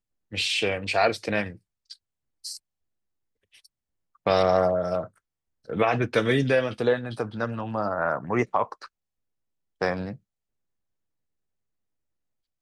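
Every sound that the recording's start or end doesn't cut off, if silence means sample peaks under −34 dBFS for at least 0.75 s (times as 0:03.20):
0:04.26–0:08.85
0:09.81–0:10.14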